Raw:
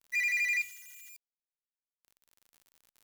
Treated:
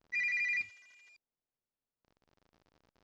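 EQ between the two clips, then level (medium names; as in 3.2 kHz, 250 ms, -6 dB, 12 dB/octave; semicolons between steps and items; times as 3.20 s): tape spacing loss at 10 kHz 37 dB; tilt shelf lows +6 dB, about 1.4 kHz; peaking EQ 5.2 kHz +12.5 dB 1 oct; +5.5 dB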